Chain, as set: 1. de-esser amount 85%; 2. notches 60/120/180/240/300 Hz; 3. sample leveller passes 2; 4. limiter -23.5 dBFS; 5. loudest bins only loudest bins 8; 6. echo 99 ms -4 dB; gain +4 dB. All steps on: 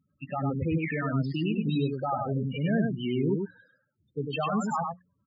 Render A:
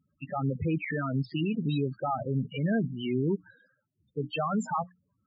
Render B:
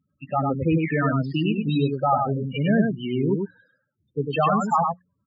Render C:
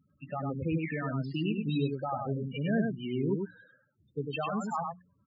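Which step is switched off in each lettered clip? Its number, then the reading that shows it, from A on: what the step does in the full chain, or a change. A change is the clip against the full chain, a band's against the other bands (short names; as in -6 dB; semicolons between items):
6, momentary loudness spread change -1 LU; 4, mean gain reduction 4.0 dB; 3, loudness change -3.5 LU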